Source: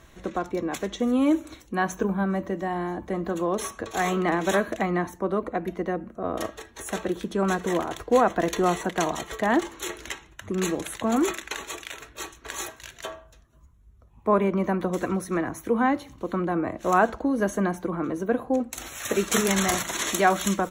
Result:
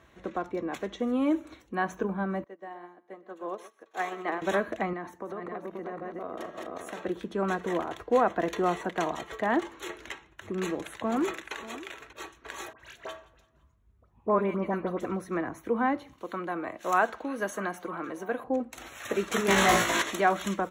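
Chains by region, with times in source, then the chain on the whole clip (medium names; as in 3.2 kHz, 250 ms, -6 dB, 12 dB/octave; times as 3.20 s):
2.44–4.42 s: high-pass 340 Hz + delay 124 ms -10 dB + upward expansion 2.5:1, over -38 dBFS
4.93–7.05 s: backward echo that repeats 265 ms, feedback 49%, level -4 dB + high-pass 190 Hz 6 dB/octave + compression 10:1, threshold -28 dBFS
9.79–12.13 s: hard clipper -17.5 dBFS + delay 589 ms -16 dB
12.73–15.05 s: phase dispersion highs, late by 69 ms, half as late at 1.9 kHz + feedback delay 171 ms, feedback 49%, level -22 dB
16.13–18.44 s: tilt EQ +3 dB/octave + repeats whose band climbs or falls 322 ms, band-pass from 2.9 kHz, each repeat -0.7 oct, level -12 dB
19.48–20.02 s: flutter echo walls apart 3 m, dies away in 0.33 s + waveshaping leveller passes 2
whole clip: high-pass 50 Hz; tone controls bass -4 dB, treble -10 dB; trim -3.5 dB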